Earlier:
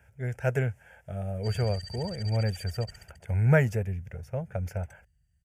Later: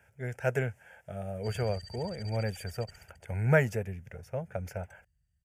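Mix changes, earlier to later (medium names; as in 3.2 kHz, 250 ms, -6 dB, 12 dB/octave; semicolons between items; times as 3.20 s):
speech: add high-pass 200 Hz 6 dB/octave; background -5.5 dB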